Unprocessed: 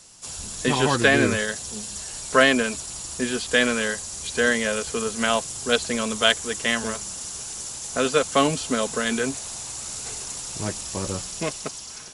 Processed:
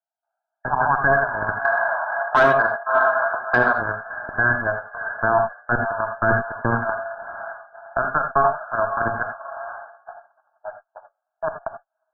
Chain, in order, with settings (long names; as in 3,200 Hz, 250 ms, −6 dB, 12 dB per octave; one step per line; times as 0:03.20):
adaptive Wiener filter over 41 samples
downward compressor 2 to 1, threshold −40 dBFS, peak gain reduction 15.5 dB
Chebyshev high-pass with heavy ripple 640 Hz, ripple 3 dB
feedback delay with all-pass diffusion 628 ms, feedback 49%, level −11 dB
noise gate −53 dBFS, range −41 dB
harmonic generator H 4 −13 dB, 7 −31 dB, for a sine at −17.5 dBFS
linear-phase brick-wall low-pass 1,700 Hz
0:01.65–0:03.75: mid-hump overdrive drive 19 dB, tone 1,100 Hz, clips at −20.5 dBFS
convolution reverb, pre-delay 3 ms, DRR 7 dB
boost into a limiter +31.5 dB
level −6 dB